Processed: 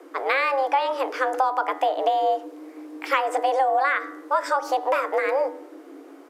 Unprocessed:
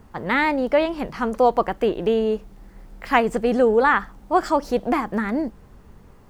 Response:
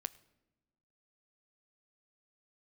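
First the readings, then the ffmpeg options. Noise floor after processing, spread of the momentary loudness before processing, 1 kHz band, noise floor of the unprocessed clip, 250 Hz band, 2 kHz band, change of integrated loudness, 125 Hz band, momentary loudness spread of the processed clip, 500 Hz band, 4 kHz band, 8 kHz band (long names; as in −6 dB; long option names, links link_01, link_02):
−46 dBFS, 9 LU, +1.5 dB, −49 dBFS, −14.5 dB, −1.5 dB, −2.0 dB, below −40 dB, 11 LU, −4.0 dB, 0.0 dB, can't be measured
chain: -filter_complex "[0:a]afreqshift=270,bandreject=frequency=82.49:width_type=h:width=4,bandreject=frequency=164.98:width_type=h:width=4,bandreject=frequency=247.47:width_type=h:width=4,bandreject=frequency=329.96:width_type=h:width=4,bandreject=frequency=412.45:width_type=h:width=4,bandreject=frequency=494.94:width_type=h:width=4,bandreject=frequency=577.43:width_type=h:width=4,bandreject=frequency=659.92:width_type=h:width=4,bandreject=frequency=742.41:width_type=h:width=4,bandreject=frequency=824.9:width_type=h:width=4,bandreject=frequency=907.39:width_type=h:width=4,bandreject=frequency=989.88:width_type=h:width=4,bandreject=frequency=1072.37:width_type=h:width=4,bandreject=frequency=1154.86:width_type=h:width=4,bandreject=frequency=1237.35:width_type=h:width=4,bandreject=frequency=1319.84:width_type=h:width=4,bandreject=frequency=1402.33:width_type=h:width=4,bandreject=frequency=1484.82:width_type=h:width=4,bandreject=frequency=1567.31:width_type=h:width=4,bandreject=frequency=1649.8:width_type=h:width=4,bandreject=frequency=1732.29:width_type=h:width=4,bandreject=frequency=1814.78:width_type=h:width=4,bandreject=frequency=1897.27:width_type=h:width=4,bandreject=frequency=1979.76:width_type=h:width=4,bandreject=frequency=2062.25:width_type=h:width=4,acompressor=threshold=-21dB:ratio=6,asplit=2[link_01][link_02];[1:a]atrim=start_sample=2205[link_03];[link_02][link_03]afir=irnorm=-1:irlink=0,volume=6.5dB[link_04];[link_01][link_04]amix=inputs=2:normalize=0,aresample=32000,aresample=44100,volume=-5.5dB"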